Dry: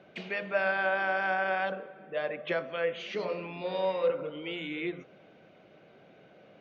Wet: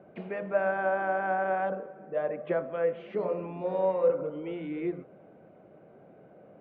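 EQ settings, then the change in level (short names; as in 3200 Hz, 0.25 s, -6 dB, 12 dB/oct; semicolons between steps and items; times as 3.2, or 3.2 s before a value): LPF 1000 Hz 12 dB/oct; +3.5 dB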